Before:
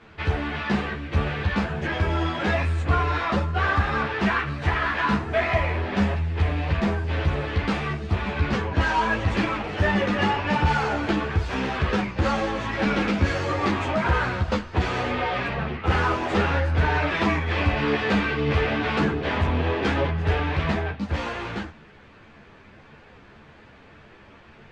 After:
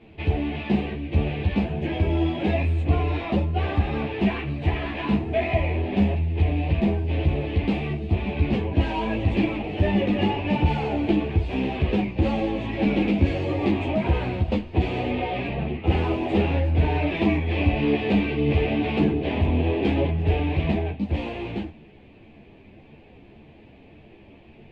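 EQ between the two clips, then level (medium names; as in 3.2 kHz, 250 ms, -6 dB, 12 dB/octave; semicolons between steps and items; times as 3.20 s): FFT filter 180 Hz 0 dB, 330 Hz +4 dB, 500 Hz -3 dB, 730 Hz -1 dB, 1.4 kHz -21 dB, 2.5 kHz -1 dB, 3.9 kHz -8 dB, 5.9 kHz -18 dB, 10 kHz -10 dB; +1.5 dB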